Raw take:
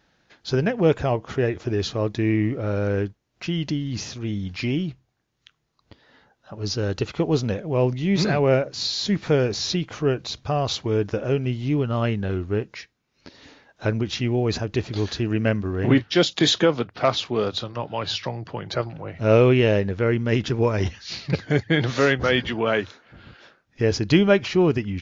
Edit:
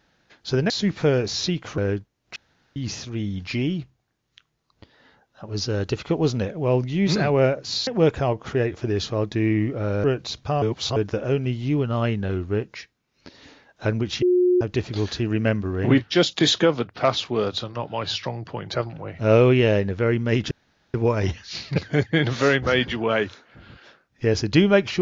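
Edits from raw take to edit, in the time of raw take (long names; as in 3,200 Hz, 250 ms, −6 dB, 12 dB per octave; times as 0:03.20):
0:00.70–0:02.87: swap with 0:08.96–0:10.04
0:03.45–0:03.85: fill with room tone
0:10.62–0:10.96: reverse
0:14.22–0:14.61: beep over 360 Hz −14.5 dBFS
0:20.51: splice in room tone 0.43 s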